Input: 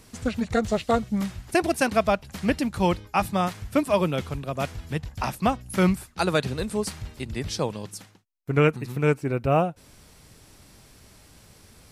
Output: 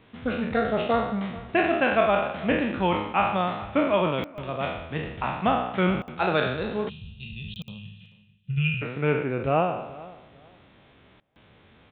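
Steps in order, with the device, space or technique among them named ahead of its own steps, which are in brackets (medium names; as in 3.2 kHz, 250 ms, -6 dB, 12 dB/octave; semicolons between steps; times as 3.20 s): spectral sustain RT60 0.84 s; call with lost packets (high-pass 150 Hz 6 dB/octave; resampled via 8 kHz; lost packets bursts); 7.78–8.82 s: graphic EQ 125/250/500/1000/2000/4000 Hz +7/-6/-6/-7/+10/-4 dB; filtered feedback delay 437 ms, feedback 23%, low-pass 2.4 kHz, level -19 dB; 6.89–8.82 s: time-frequency box 220–2400 Hz -25 dB; trim -2 dB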